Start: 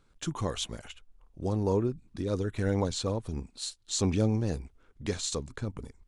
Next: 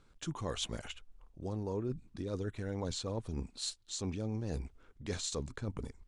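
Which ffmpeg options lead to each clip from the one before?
ffmpeg -i in.wav -af "lowpass=9800,areverse,acompressor=threshold=-35dB:ratio=6,areverse,volume=1dB" out.wav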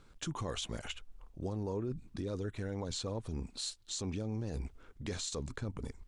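ffmpeg -i in.wav -af "alimiter=level_in=9dB:limit=-24dB:level=0:latency=1:release=123,volume=-9dB,volume=4.5dB" out.wav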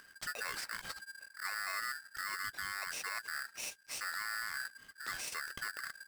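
ffmpeg -i in.wav -af "acompressor=mode=upward:threshold=-53dB:ratio=2.5,aeval=exprs='val(0)*sgn(sin(2*PI*1600*n/s))':channel_layout=same,volume=-2.5dB" out.wav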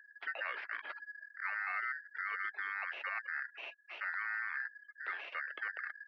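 ffmpeg -i in.wav -af "afftfilt=real='re*gte(hypot(re,im),0.00282)':imag='im*gte(hypot(re,im),0.00282)':win_size=1024:overlap=0.75,highpass=frequency=290:width_type=q:width=0.5412,highpass=frequency=290:width_type=q:width=1.307,lowpass=frequency=2900:width_type=q:width=0.5176,lowpass=frequency=2900:width_type=q:width=0.7071,lowpass=frequency=2900:width_type=q:width=1.932,afreqshift=79,volume=2dB" out.wav

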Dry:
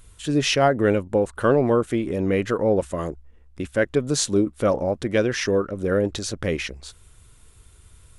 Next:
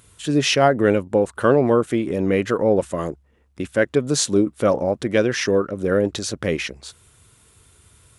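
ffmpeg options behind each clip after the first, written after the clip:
ffmpeg -i in.wav -af "highpass=100,volume=2.5dB" out.wav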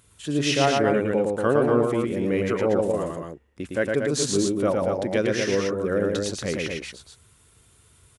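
ffmpeg -i in.wav -af "aecho=1:1:110.8|236.2:0.708|0.562,volume=-6dB" out.wav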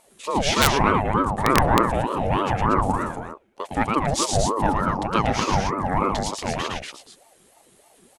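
ffmpeg -i in.wav -af "aeval=exprs='(mod(2.66*val(0)+1,2)-1)/2.66':channel_layout=same,aeval=exprs='0.376*(cos(1*acos(clip(val(0)/0.376,-1,1)))-cos(1*PI/2))+0.0266*(cos(3*acos(clip(val(0)/0.376,-1,1)))-cos(3*PI/2))':channel_layout=same,aeval=exprs='val(0)*sin(2*PI*530*n/s+530*0.5/3.3*sin(2*PI*3.3*n/s))':channel_layout=same,volume=6dB" out.wav

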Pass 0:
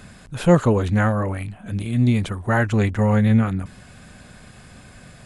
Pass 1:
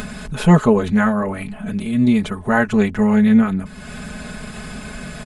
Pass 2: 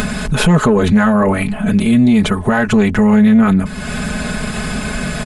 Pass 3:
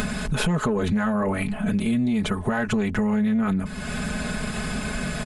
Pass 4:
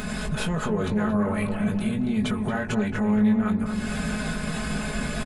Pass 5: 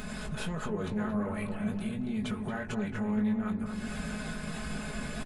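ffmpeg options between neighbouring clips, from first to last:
ffmpeg -i in.wav -af "equalizer=frequency=8100:width=0.41:gain=-3,aecho=1:1:4.7:0.84,acompressor=mode=upward:threshold=-22dB:ratio=2.5,volume=1.5dB" out.wav
ffmpeg -i in.wav -af "asoftclip=type=tanh:threshold=-4.5dB,alimiter=level_in=14.5dB:limit=-1dB:release=50:level=0:latency=1,volume=-3.5dB" out.wav
ffmpeg -i in.wav -af "acompressor=threshold=-12dB:ratio=6,volume=-7.5dB" out.wav
ffmpeg -i in.wav -filter_complex "[0:a]alimiter=limit=-18dB:level=0:latency=1:release=110,asplit=2[link_01][link_02];[link_02]adelay=19,volume=-6dB[link_03];[link_01][link_03]amix=inputs=2:normalize=0,asplit=2[link_04][link_05];[link_05]adelay=227,lowpass=frequency=1300:poles=1,volume=-5dB,asplit=2[link_06][link_07];[link_07]adelay=227,lowpass=frequency=1300:poles=1,volume=0.55,asplit=2[link_08][link_09];[link_09]adelay=227,lowpass=frequency=1300:poles=1,volume=0.55,asplit=2[link_10][link_11];[link_11]adelay=227,lowpass=frequency=1300:poles=1,volume=0.55,asplit=2[link_12][link_13];[link_13]adelay=227,lowpass=frequency=1300:poles=1,volume=0.55,asplit=2[link_14][link_15];[link_15]adelay=227,lowpass=frequency=1300:poles=1,volume=0.55,asplit=2[link_16][link_17];[link_17]adelay=227,lowpass=frequency=1300:poles=1,volume=0.55[link_18];[link_04][link_06][link_08][link_10][link_12][link_14][link_16][link_18]amix=inputs=8:normalize=0,volume=-2dB" out.wav
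ffmpeg -i in.wav -af "flanger=delay=0.3:depth=9.4:regen=83:speed=1.5:shape=triangular,volume=-4dB" out.wav

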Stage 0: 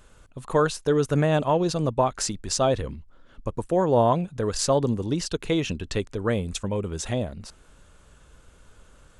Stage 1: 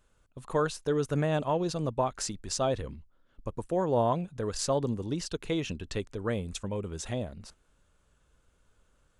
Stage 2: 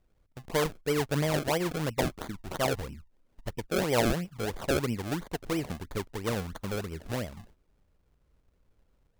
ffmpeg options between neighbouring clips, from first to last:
ffmpeg -i in.wav -af "agate=range=-8dB:threshold=-44dB:ratio=16:detection=peak,volume=-6.5dB" out.wav
ffmpeg -i in.wav -af "adynamicsmooth=sensitivity=8:basefreq=1100,acrusher=samples=32:mix=1:aa=0.000001:lfo=1:lforange=32:lforate=3" out.wav

